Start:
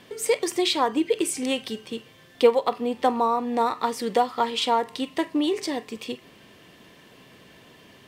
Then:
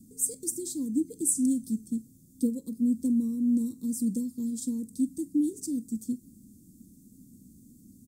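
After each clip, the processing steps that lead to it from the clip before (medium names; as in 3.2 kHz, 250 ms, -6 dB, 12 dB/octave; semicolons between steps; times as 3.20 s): elliptic band-stop 240–7700 Hz, stop band 50 dB; comb 3.7 ms, depth 45%; trim +3.5 dB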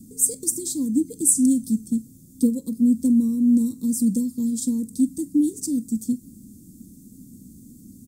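dynamic bell 380 Hz, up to -7 dB, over -46 dBFS, Q 3.1; trim +8.5 dB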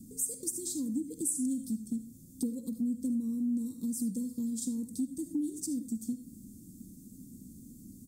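reverberation RT60 0.25 s, pre-delay 35 ms, DRR 9 dB; compression 2.5:1, threshold -29 dBFS, peak gain reduction 11 dB; trim -5 dB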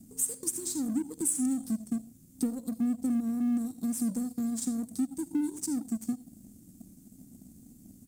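companding laws mixed up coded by A; trim +4.5 dB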